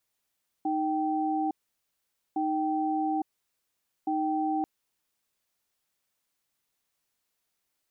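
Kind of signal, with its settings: cadence 311 Hz, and 777 Hz, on 0.86 s, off 0.85 s, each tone -28 dBFS 3.99 s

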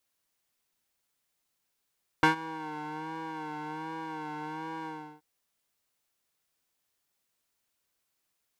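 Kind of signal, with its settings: synth patch with vibrato D#4, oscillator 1 square, oscillator 2 square, interval -12 st, detune 15 cents, oscillator 2 level -1.5 dB, noise -13 dB, filter bandpass, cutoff 700 Hz, Q 1.3, filter envelope 1 oct, attack 1.5 ms, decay 0.12 s, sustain -21 dB, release 0.36 s, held 2.62 s, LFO 1.3 Hz, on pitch 53 cents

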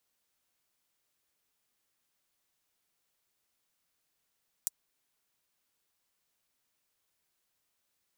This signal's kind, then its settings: closed hi-hat, high-pass 7200 Hz, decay 0.03 s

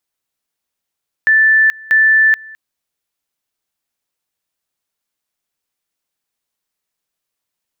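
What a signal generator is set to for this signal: two-level tone 1760 Hz -7 dBFS, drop 24.5 dB, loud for 0.43 s, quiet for 0.21 s, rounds 2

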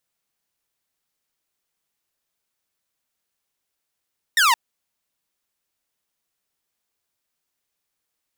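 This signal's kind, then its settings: laser zap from 1900 Hz, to 880 Hz, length 0.17 s saw, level -11 dB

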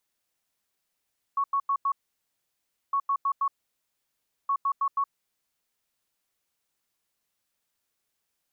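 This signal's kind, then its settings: beep pattern sine 1110 Hz, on 0.07 s, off 0.09 s, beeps 4, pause 1.01 s, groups 3, -22 dBFS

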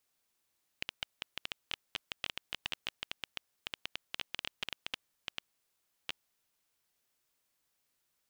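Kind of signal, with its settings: random clicks 9.9/s -18 dBFS 5.48 s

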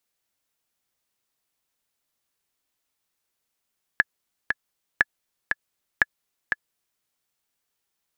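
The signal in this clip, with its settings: metronome 119 bpm, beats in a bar 2, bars 3, 1710 Hz, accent 5.5 dB -3.5 dBFS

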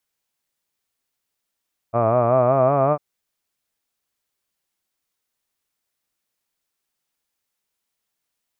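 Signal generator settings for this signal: formant-synthesis vowel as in hud, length 1.05 s, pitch 112 Hz, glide +4.5 st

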